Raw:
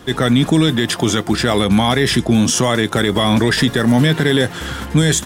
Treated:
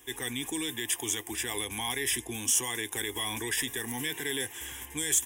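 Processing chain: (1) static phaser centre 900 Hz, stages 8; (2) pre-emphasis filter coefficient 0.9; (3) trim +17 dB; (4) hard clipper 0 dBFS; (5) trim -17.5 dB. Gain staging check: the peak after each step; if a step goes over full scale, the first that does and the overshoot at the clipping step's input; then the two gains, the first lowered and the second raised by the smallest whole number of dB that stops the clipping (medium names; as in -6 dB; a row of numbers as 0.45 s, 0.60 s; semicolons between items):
-5.5 dBFS, -10.0 dBFS, +7.0 dBFS, 0.0 dBFS, -17.5 dBFS; step 3, 7.0 dB; step 3 +10 dB, step 5 -10.5 dB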